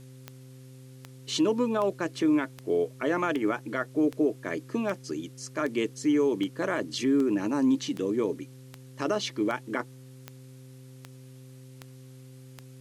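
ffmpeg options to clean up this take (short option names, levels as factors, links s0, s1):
-af "adeclick=t=4,bandreject=f=129.8:t=h:w=4,bandreject=f=259.6:t=h:w=4,bandreject=f=389.4:t=h:w=4,bandreject=f=519.2:t=h:w=4,agate=range=0.0891:threshold=0.01"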